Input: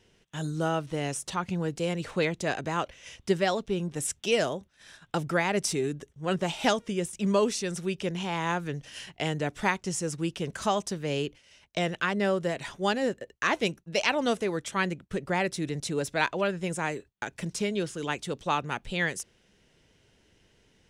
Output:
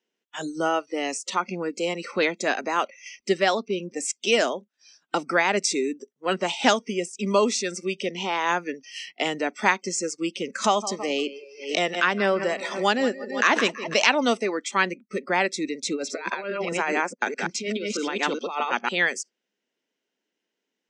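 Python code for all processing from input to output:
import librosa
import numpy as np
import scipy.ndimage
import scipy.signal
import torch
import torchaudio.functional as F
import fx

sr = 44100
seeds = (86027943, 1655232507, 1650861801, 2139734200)

y = fx.chain(x, sr, fx.echo_feedback(ms=164, feedback_pct=52, wet_db=-15.0),
    fx.pre_swell(db_per_s=93.0), at=(10.64, 14.11))
y = fx.chain(y, sr, fx.reverse_delay(ms=209, wet_db=-2.5),
    fx.lowpass(hz=6300.0, slope=12),
    fx.over_compress(threshold_db=-30.0, ratio=-0.5), at=(15.88, 18.89))
y = scipy.signal.sosfilt(scipy.signal.ellip(3, 1.0, 40, [240.0, 7400.0], 'bandpass', fs=sr, output='sos'), y)
y = fx.noise_reduce_blind(y, sr, reduce_db=23)
y = fx.dynamic_eq(y, sr, hz=420.0, q=1.0, threshold_db=-35.0, ratio=4.0, max_db=-3)
y = y * librosa.db_to_amplitude(7.0)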